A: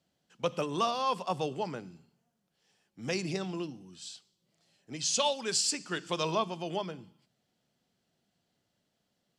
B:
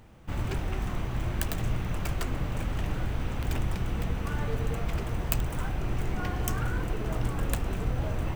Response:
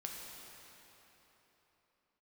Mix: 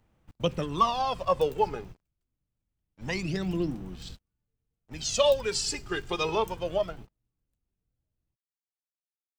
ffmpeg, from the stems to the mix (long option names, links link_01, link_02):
-filter_complex "[0:a]aphaser=in_gain=1:out_gain=1:delay=2.5:decay=0.69:speed=0.25:type=sinusoidal,aeval=exprs='sgn(val(0))*max(abs(val(0))-0.00266,0)':channel_layout=same,highshelf=frequency=4700:gain=-10.5,volume=2.5dB,asplit=2[link_01][link_02];[1:a]acrossover=split=370|3000[link_03][link_04][link_05];[link_04]acompressor=threshold=-55dB:ratio=2[link_06];[link_03][link_06][link_05]amix=inputs=3:normalize=0,volume=-15dB[link_07];[link_02]apad=whole_len=368628[link_08];[link_07][link_08]sidechaingate=range=-38dB:threshold=-49dB:ratio=16:detection=peak[link_09];[link_01][link_09]amix=inputs=2:normalize=0"